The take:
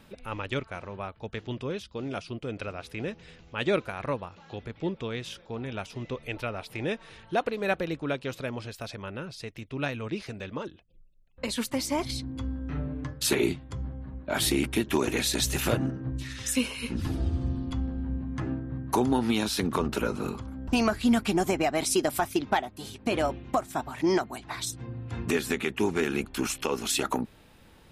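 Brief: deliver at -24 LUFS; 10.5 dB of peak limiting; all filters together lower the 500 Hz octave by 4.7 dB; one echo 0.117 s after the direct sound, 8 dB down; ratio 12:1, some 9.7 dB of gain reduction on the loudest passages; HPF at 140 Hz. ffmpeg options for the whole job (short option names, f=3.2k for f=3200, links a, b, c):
-af "highpass=140,equalizer=f=500:t=o:g=-6.5,acompressor=threshold=-32dB:ratio=12,alimiter=level_in=4.5dB:limit=-24dB:level=0:latency=1,volume=-4.5dB,aecho=1:1:117:0.398,volume=15.5dB"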